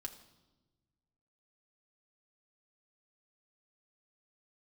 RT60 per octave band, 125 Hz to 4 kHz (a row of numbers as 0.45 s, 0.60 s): 2.1 s, 1.7 s, 1.3 s, 1.0 s, 0.85 s, 0.95 s